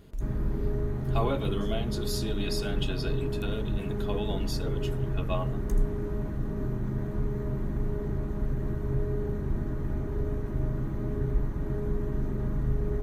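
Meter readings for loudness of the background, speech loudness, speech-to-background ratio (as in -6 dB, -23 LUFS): -32.5 LUFS, -36.0 LUFS, -3.5 dB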